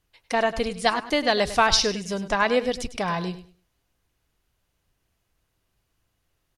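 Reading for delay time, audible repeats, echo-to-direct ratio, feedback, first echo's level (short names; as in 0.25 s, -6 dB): 0.101 s, 2, -13.5 dB, 22%, -13.5 dB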